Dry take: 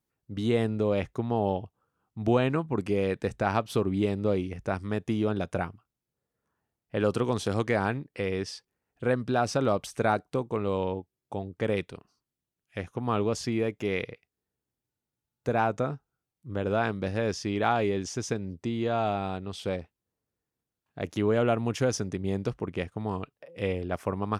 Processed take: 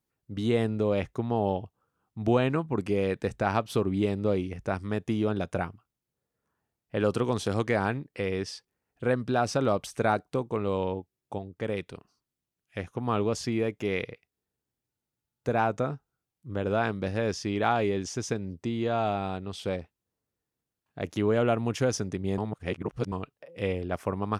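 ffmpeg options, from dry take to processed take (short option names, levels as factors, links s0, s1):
-filter_complex "[0:a]asplit=5[s0][s1][s2][s3][s4];[s0]atrim=end=11.382[s5];[s1]atrim=start=11.378:end=11.862,asetpts=PTS-STARTPTS,volume=0.668[s6];[s2]atrim=start=11.858:end=22.382[s7];[s3]atrim=start=22.378:end=23.122,asetpts=PTS-STARTPTS,areverse[s8];[s4]atrim=start=23.118[s9];[s5][s6]acrossfade=d=0.004:c1=hsin:c2=hsin[s10];[s10][s7]acrossfade=d=0.004:c1=hsin:c2=hsin[s11];[s11][s8]acrossfade=d=0.004:c1=hsin:c2=hsin[s12];[s12][s9]acrossfade=d=0.004:c1=hsin:c2=hsin"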